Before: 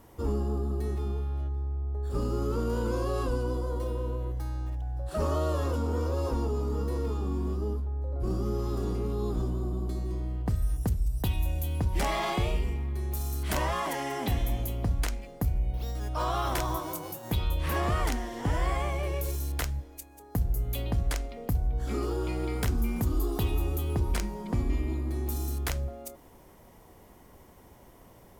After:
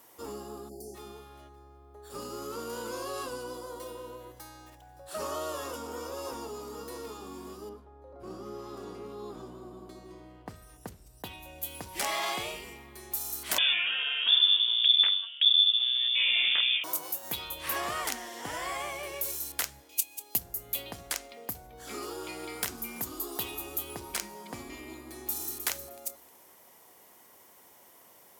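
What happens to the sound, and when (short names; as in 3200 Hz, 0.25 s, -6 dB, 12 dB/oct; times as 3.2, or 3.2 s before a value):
0.69–0.95 spectral delete 830–4300 Hz
5.26–6.43 notch 4200 Hz
7.69–11.63 LPF 1900 Hz 6 dB/oct
13.58–16.84 inverted band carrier 3500 Hz
19.89–20.38 resonant high shelf 2100 Hz +8.5 dB, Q 3
25.1–25.66 echo throw 0.31 s, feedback 25%, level -8.5 dB
whole clip: HPF 360 Hz 6 dB/oct; tilt +2.5 dB/oct; gain -1.5 dB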